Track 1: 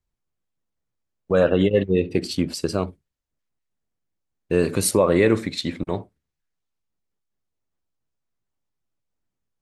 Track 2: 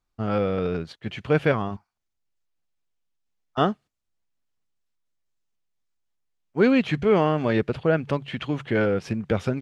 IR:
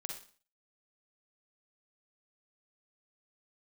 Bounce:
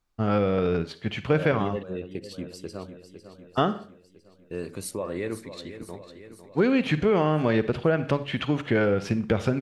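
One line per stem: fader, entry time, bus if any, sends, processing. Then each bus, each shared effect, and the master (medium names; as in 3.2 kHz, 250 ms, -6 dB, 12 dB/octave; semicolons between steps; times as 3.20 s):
-14.0 dB, 0.00 s, no send, echo send -11.5 dB, none
0.0 dB, 0.00 s, send -5.5 dB, no echo send, none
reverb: on, RT60 0.40 s, pre-delay 40 ms
echo: feedback delay 502 ms, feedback 60%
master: compression 5:1, threshold -18 dBFS, peak gain reduction 7.5 dB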